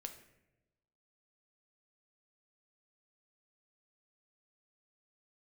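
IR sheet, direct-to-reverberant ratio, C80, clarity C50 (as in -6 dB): 5.5 dB, 12.5 dB, 10.0 dB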